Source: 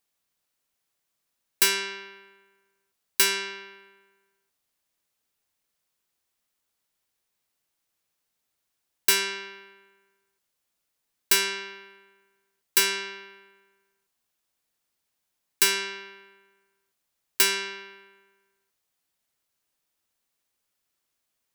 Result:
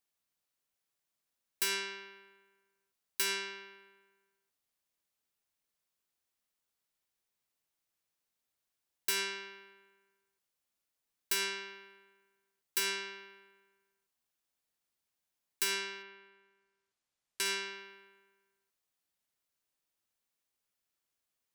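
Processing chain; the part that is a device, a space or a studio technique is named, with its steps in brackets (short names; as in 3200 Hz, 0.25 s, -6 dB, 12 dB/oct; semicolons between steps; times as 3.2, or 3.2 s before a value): clipper into limiter (hard clip -10.5 dBFS, distortion -22 dB; limiter -15.5 dBFS, peak gain reduction 5 dB); 16.02–17.44 LPF 4100 Hz -> 11000 Hz 12 dB/oct; gain -7 dB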